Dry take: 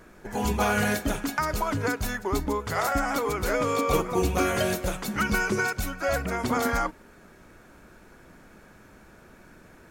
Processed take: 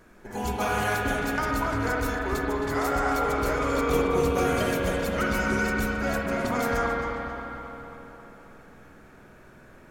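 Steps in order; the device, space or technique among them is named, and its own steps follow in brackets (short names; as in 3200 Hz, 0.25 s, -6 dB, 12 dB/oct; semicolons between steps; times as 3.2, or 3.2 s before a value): dub delay into a spring reverb (darkening echo 0.268 s, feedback 64%, low-pass 3800 Hz, level -6 dB; spring tank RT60 2.8 s, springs 47/55 ms, chirp 55 ms, DRR -1 dB); gain -4 dB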